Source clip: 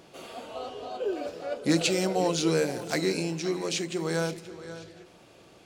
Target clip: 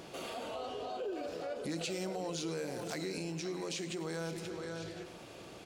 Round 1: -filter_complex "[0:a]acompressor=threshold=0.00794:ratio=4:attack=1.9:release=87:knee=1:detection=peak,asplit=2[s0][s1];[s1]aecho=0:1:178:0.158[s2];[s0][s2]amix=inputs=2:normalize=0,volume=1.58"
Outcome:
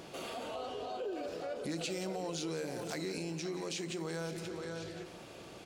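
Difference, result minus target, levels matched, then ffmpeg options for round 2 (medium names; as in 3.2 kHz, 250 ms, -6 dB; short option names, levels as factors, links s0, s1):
echo 75 ms late
-filter_complex "[0:a]acompressor=threshold=0.00794:ratio=4:attack=1.9:release=87:knee=1:detection=peak,asplit=2[s0][s1];[s1]aecho=0:1:103:0.158[s2];[s0][s2]amix=inputs=2:normalize=0,volume=1.58"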